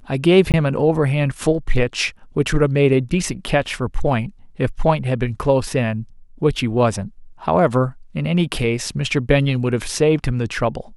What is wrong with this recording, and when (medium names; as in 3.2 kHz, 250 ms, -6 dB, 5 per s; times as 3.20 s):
0.52–0.54 s: dropout 18 ms